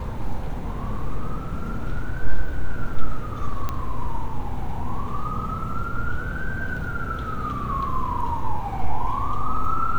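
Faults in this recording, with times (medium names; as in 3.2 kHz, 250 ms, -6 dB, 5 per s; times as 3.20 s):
3.69 s: pop -13 dBFS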